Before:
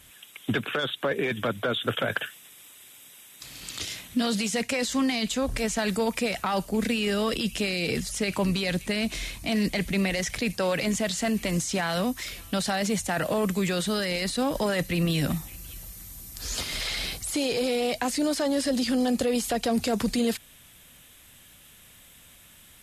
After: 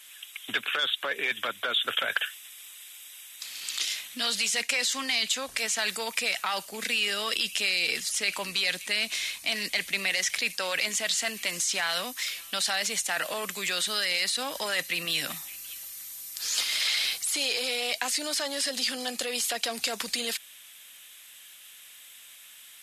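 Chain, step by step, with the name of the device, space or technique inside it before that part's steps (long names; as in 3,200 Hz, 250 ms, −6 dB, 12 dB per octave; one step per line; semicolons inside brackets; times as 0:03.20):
filter by subtraction (in parallel: low-pass filter 2,800 Hz 12 dB per octave + polarity inversion)
on the sum: parametric band 110 Hz −3.5 dB 1.9 octaves
level +3 dB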